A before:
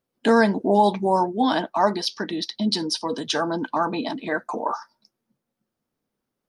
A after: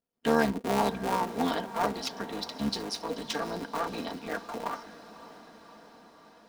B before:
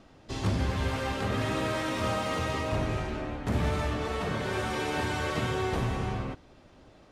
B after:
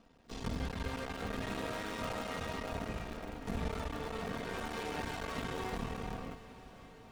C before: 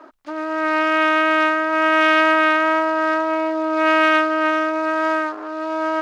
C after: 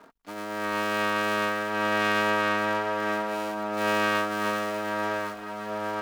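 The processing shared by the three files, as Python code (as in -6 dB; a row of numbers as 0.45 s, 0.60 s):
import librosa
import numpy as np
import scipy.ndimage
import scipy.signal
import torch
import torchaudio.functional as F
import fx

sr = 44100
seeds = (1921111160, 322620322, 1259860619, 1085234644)

y = fx.cycle_switch(x, sr, every=3, mode='muted')
y = y + 0.46 * np.pad(y, (int(4.3 * sr / 1000.0), 0))[:len(y)]
y = fx.echo_diffused(y, sr, ms=586, feedback_pct=66, wet_db=-15.5)
y = y * 10.0 ** (-8.0 / 20.0)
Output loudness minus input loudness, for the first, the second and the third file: -8.5 LU, -9.5 LU, -9.0 LU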